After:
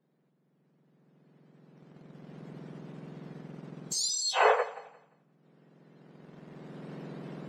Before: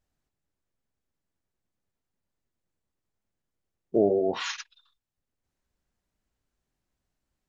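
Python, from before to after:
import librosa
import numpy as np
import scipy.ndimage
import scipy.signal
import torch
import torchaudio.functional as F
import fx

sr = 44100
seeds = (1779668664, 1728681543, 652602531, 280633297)

p1 = fx.octave_mirror(x, sr, pivot_hz=1700.0)
p2 = fx.recorder_agc(p1, sr, target_db=-21.0, rise_db_per_s=12.0, max_gain_db=30)
p3 = np.where(np.abs(p2) >= 10.0 ** (-53.0 / 20.0), p2, 0.0)
p4 = p2 + (p3 * 10.0 ** (-9.0 / 20.0))
p5 = scipy.signal.sosfilt(scipy.signal.butter(2, 5100.0, 'lowpass', fs=sr, output='sos'), p4)
p6 = fx.bass_treble(p5, sr, bass_db=-1, treble_db=-7)
p7 = p6 + fx.echo_thinned(p6, sr, ms=175, feedback_pct=29, hz=190.0, wet_db=-18.0, dry=0)
y = p7 * 10.0 ** (6.5 / 20.0)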